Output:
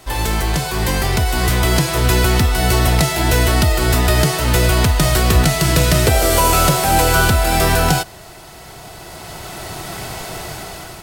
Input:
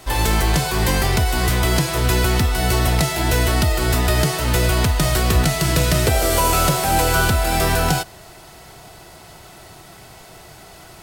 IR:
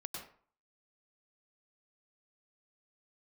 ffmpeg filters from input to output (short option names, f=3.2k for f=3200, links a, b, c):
-af "dynaudnorm=f=500:g=5:m=16.5dB,volume=-1dB"